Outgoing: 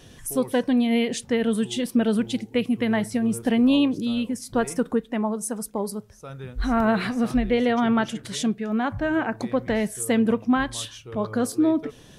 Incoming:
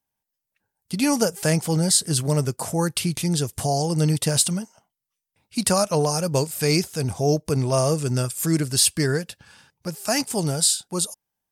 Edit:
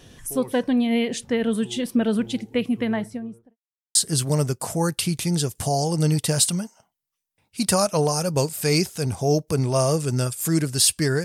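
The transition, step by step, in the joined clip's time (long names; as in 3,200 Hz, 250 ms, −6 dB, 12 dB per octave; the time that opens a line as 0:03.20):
outgoing
0:02.71–0:03.57: fade out and dull
0:03.57–0:03.95: silence
0:03.95: continue with incoming from 0:01.93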